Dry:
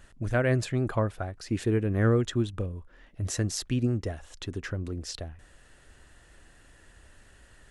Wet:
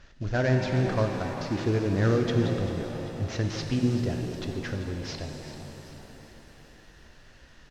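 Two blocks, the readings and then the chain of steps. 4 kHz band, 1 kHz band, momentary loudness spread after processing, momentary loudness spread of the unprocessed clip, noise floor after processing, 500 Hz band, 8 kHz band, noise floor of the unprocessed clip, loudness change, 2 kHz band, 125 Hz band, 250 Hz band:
+1.5 dB, +3.0 dB, 16 LU, 14 LU, -53 dBFS, +1.5 dB, -6.5 dB, -57 dBFS, +1.0 dB, +1.0 dB, +1.5 dB, +2.0 dB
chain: CVSD 32 kbps; frequency-shifting echo 0.39 s, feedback 50%, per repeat +60 Hz, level -13.5 dB; shimmer reverb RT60 3.3 s, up +7 st, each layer -8 dB, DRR 4 dB

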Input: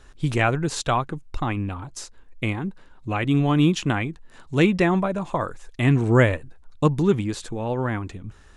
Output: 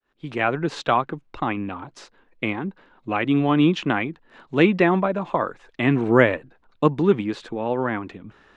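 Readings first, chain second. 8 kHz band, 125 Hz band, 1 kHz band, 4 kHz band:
under -10 dB, -5.5 dB, +2.5 dB, -0.5 dB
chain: opening faded in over 0.65 s; three-band isolator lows -19 dB, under 170 Hz, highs -23 dB, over 4000 Hz; gain +3 dB

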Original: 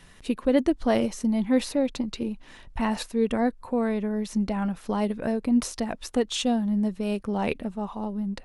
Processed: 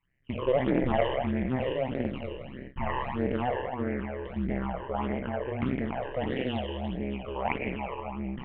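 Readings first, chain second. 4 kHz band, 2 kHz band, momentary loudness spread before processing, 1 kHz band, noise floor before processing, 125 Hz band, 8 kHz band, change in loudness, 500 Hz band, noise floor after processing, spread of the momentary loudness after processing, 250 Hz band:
-7.0 dB, 0.0 dB, 8 LU, 0.0 dB, -50 dBFS, +2.0 dB, under -40 dB, -4.5 dB, -2.5 dB, -43 dBFS, 9 LU, -7.5 dB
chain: spectral trails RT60 2.07 s; rippled Chebyshev low-pass 3100 Hz, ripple 6 dB; de-hum 80.79 Hz, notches 29; gate with hold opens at -30 dBFS; AM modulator 130 Hz, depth 90%; phaser stages 12, 1.6 Hz, lowest notch 220–1100 Hz; Doppler distortion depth 0.22 ms; gain +4 dB

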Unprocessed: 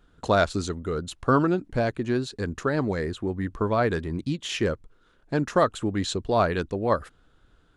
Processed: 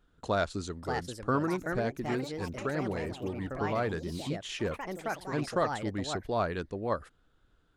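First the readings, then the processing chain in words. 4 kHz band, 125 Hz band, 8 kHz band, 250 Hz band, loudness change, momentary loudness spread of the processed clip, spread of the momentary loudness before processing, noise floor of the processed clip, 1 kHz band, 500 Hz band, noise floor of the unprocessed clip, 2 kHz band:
-7.0 dB, -7.5 dB, -6.5 dB, -7.5 dB, -7.0 dB, 6 LU, 7 LU, -68 dBFS, -6.5 dB, -7.0 dB, -62 dBFS, -5.5 dB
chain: echoes that change speed 0.644 s, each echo +4 st, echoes 3, each echo -6 dB; gain -8 dB

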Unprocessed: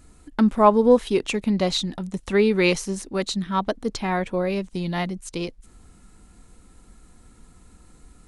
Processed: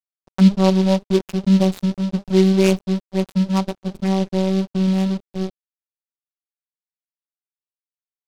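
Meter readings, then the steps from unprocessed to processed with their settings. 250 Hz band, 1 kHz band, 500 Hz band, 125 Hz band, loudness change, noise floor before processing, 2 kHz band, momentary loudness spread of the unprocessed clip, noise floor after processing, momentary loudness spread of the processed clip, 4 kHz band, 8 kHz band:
+6.5 dB, -5.0 dB, 0.0 dB, +10.5 dB, +3.5 dB, -53 dBFS, -5.0 dB, 13 LU, under -85 dBFS, 11 LU, -1.0 dB, -2.0 dB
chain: Wiener smoothing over 41 samples; in parallel at +0.5 dB: compressor 6:1, threshold -35 dBFS, peak gain reduction 23.5 dB; on the sum: bell 110 Hz +11.5 dB 2.2 oct; notch 5700 Hz, Q 5; envelope flanger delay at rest 4.2 ms, full sweep at -14 dBFS; robotiser 190 Hz; high shelf 3500 Hz -6.5 dB; notches 50/100/150/200/250/300/350/400 Hz; crossover distortion -31.5 dBFS; wow and flutter 15 cents; noise-modulated delay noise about 3400 Hz, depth 0.049 ms; gain +2.5 dB

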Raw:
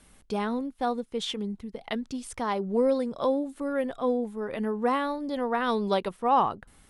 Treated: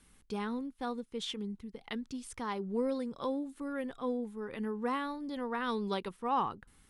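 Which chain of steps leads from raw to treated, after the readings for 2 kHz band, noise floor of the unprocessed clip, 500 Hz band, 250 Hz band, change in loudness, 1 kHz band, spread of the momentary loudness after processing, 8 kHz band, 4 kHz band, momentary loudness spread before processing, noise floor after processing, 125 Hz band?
-6.5 dB, -59 dBFS, -10.0 dB, -6.5 dB, -8.0 dB, -8.5 dB, 7 LU, -6.0 dB, -6.0 dB, 9 LU, -65 dBFS, n/a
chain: bell 640 Hz -11 dB 0.47 oct; gain -6 dB

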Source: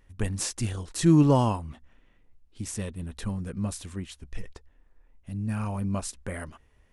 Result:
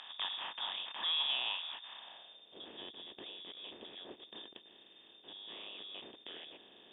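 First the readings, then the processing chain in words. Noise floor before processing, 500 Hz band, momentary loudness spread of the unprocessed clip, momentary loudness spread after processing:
-62 dBFS, -21.5 dB, 20 LU, 21 LU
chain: per-bin compression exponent 0.4; inverted band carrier 3600 Hz; band-pass sweep 1000 Hz -> 400 Hz, 1.94–2.59; gain -1 dB

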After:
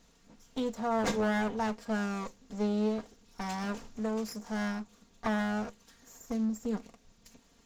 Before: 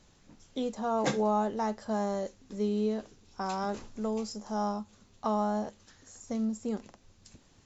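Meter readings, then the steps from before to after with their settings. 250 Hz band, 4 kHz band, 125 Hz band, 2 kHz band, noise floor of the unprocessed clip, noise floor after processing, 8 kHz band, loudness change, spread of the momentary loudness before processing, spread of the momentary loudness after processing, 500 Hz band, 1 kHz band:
+0.5 dB, +1.0 dB, +0.5 dB, +7.0 dB, -62 dBFS, -64 dBFS, n/a, -1.0 dB, 11 LU, 11 LU, -2.5 dB, -4.0 dB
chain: minimum comb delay 4.3 ms

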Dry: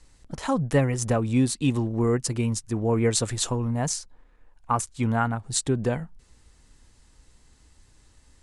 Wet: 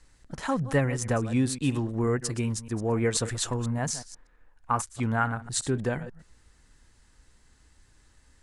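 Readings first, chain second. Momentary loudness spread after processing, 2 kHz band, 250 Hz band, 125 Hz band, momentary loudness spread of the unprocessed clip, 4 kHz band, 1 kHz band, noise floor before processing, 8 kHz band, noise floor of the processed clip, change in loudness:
7 LU, +1.0 dB, -3.5 dB, -3.0 dB, 6 LU, -3.0 dB, -2.0 dB, -59 dBFS, -3.5 dB, -61 dBFS, -3.0 dB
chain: reverse delay 0.122 s, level -14 dB; bell 1600 Hz +6 dB 0.69 oct; gain -3.5 dB

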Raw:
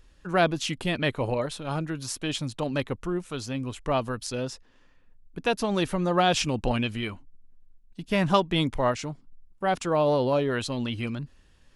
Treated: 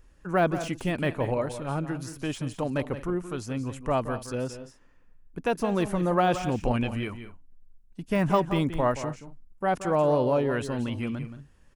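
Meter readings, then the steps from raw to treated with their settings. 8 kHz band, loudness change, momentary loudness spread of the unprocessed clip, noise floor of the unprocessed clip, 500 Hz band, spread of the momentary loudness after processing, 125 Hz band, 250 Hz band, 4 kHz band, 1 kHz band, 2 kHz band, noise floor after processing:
-6.5 dB, -0.5 dB, 11 LU, -58 dBFS, 0.0 dB, 10 LU, +0.5 dB, 0.0 dB, -9.5 dB, -0.5 dB, -3.0 dB, -56 dBFS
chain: de-esser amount 75%; bell 3800 Hz -10 dB 1 oct; tapped delay 0.175/0.218 s -11.5/-19 dB

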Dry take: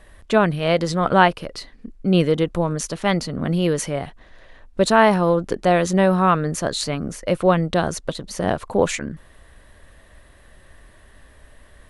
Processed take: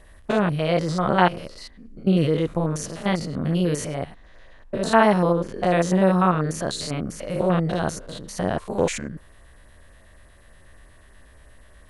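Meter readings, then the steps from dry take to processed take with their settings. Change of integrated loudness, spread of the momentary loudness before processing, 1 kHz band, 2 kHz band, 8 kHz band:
-2.5 dB, 13 LU, -3.5 dB, -4.0 dB, -4.0 dB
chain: stepped spectrum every 0.1 s; LFO notch sine 8.3 Hz 290–3800 Hz

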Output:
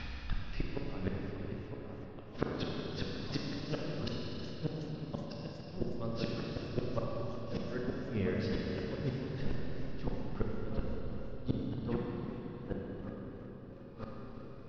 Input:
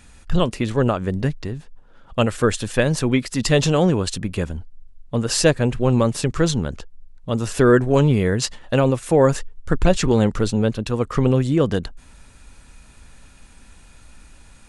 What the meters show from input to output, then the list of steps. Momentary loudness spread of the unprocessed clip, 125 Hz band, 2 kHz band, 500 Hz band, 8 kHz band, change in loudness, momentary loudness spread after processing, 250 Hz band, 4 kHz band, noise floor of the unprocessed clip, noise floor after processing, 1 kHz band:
11 LU, -18.0 dB, -19.0 dB, -20.0 dB, under -30 dB, -19.5 dB, 9 LU, -17.5 dB, -18.0 dB, -48 dBFS, -48 dBFS, -20.5 dB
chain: on a send: dark delay 0.957 s, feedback 45%, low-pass 1500 Hz, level -4 dB; on the sum: flipped gate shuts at -9 dBFS, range -27 dB; reverse; compressor 10:1, threshold -36 dBFS, peak gain reduction 21.5 dB; reverse; steep low-pass 5500 Hz 96 dB/oct; flipped gate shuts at -33 dBFS, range -29 dB; Schroeder reverb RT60 3.8 s, combs from 31 ms, DRR -2.5 dB; warbling echo 0.37 s, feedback 66%, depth 86 cents, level -15 dB; gain +11 dB

